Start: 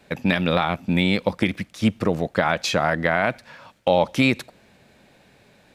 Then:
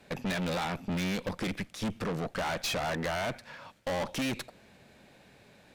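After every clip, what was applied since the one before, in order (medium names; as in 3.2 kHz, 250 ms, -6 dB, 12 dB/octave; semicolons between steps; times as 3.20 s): valve stage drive 29 dB, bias 0.6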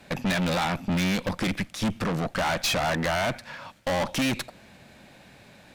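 peaking EQ 430 Hz -6 dB 0.43 oct; trim +7 dB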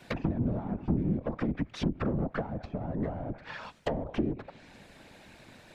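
low-pass that closes with the level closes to 330 Hz, closed at -22 dBFS; whisper effect; trim -2 dB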